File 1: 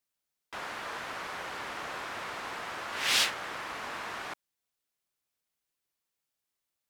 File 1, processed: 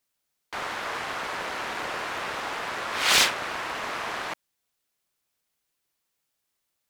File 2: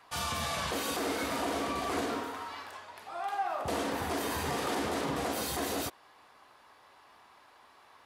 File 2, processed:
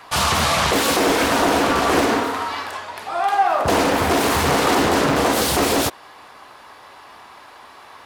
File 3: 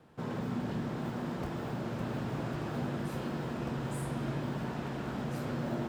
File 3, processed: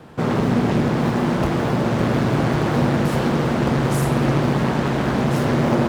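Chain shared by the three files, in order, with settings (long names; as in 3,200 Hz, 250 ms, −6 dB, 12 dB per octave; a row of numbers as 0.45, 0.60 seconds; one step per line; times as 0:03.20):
highs frequency-modulated by the lows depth 0.68 ms
normalise the peak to −6 dBFS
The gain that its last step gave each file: +6.5, +16.0, +17.5 decibels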